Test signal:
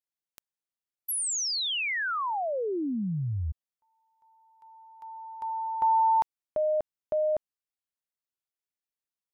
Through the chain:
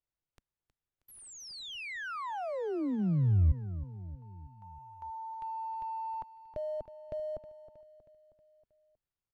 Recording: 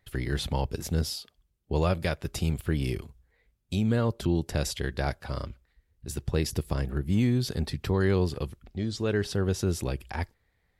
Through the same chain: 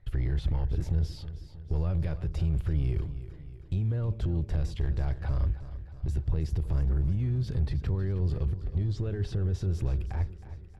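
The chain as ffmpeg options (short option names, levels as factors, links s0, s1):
-filter_complex "[0:a]equalizer=f=230:w=5.3:g=-12.5,asplit=2[s0][s1];[s1]acrusher=bits=3:mode=log:mix=0:aa=0.000001,volume=0.316[s2];[s0][s2]amix=inputs=2:normalize=0,acompressor=threshold=0.02:ratio=12:attack=0.23:release=28:knee=1:detection=peak,aemphasis=mode=reproduction:type=riaa,aecho=1:1:317|634|951|1268|1585:0.211|0.114|0.0616|0.0333|0.018,volume=0.841"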